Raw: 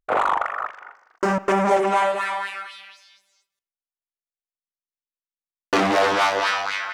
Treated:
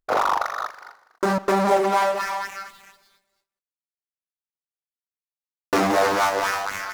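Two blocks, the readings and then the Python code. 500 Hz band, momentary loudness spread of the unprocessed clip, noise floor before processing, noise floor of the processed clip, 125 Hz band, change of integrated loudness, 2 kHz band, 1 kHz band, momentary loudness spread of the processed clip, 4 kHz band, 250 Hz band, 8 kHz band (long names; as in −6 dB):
0.0 dB, 12 LU, below −85 dBFS, below −85 dBFS, 0.0 dB, −1.0 dB, −2.5 dB, −0.5 dB, 13 LU, −3.5 dB, 0.0 dB, +3.0 dB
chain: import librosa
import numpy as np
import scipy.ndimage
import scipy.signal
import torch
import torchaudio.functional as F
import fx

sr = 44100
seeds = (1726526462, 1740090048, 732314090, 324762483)

y = scipy.signal.medfilt(x, 15)
y = fx.high_shelf(y, sr, hz=5200.0, db=6.5)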